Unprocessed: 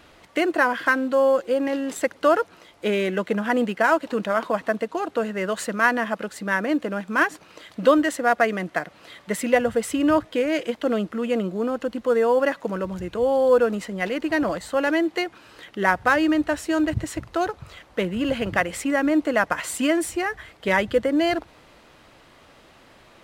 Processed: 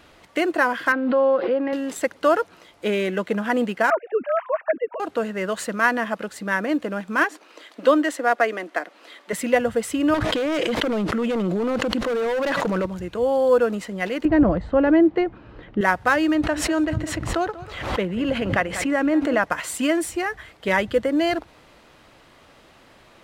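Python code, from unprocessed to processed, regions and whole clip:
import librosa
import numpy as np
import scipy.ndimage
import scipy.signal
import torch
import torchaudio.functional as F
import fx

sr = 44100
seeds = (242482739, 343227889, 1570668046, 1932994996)

y = fx.chain(x, sr, fx.resample_bad(factor=4, down='none', up='filtered'),
    fx.bandpass_edges(low_hz=160.0, high_hz=2300.0),
    fx.pre_swell(db_per_s=50.0), at=(0.92, 1.73))
y = fx.chain(y, sr, fx.sine_speech(),
    fx.lowpass(hz=2500.0, slope=24), at=(3.9, 5.0))
y = fx.chain(y, sr, fx.steep_highpass(hz=250.0, slope=36),
    fx.high_shelf(hz=7600.0, db=-4.0), at=(7.24, 9.33))
y = fx.chain(y, sr, fx.high_shelf(hz=9100.0, db=-8.0),
    fx.clip_hard(threshold_db=-21.5),
    fx.env_flatten(amount_pct=100), at=(10.14, 12.86))
y = fx.chain(y, sr, fx.lowpass(hz=3800.0, slope=12),
    fx.tilt_eq(slope=-4.5), at=(14.25, 15.81))
y = fx.chain(y, sr, fx.high_shelf(hz=5100.0, db=-9.5),
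    fx.echo_single(ms=191, db=-17.0),
    fx.pre_swell(db_per_s=58.0), at=(16.35, 19.43))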